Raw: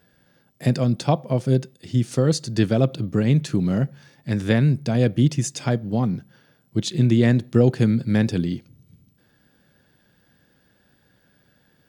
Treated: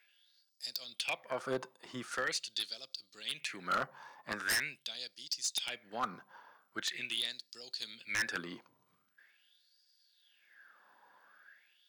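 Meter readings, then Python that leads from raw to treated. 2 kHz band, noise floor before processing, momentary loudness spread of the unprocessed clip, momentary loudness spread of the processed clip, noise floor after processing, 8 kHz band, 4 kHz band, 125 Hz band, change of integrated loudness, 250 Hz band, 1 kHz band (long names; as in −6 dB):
−2.5 dB, −62 dBFS, 8 LU, 12 LU, −75 dBFS, −6.0 dB, −2.0 dB, −38.0 dB, −16.0 dB, −29.5 dB, −7.5 dB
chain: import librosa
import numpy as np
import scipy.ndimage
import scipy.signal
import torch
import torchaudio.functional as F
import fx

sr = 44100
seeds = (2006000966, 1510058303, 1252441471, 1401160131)

y = fx.filter_lfo_highpass(x, sr, shape='sine', hz=0.43, low_hz=970.0, high_hz=4900.0, q=7.5)
y = fx.tilt_shelf(y, sr, db=8.5, hz=1100.0)
y = 10.0 ** (-23.5 / 20.0) * (np.abs((y / 10.0 ** (-23.5 / 20.0) + 3.0) % 4.0 - 2.0) - 1.0)
y = y * librosa.db_to_amplitude(-2.0)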